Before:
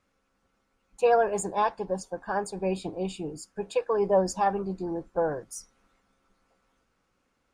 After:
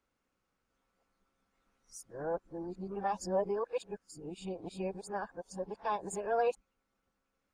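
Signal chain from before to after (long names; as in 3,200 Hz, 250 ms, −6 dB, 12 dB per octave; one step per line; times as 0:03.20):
played backwards from end to start
level −9 dB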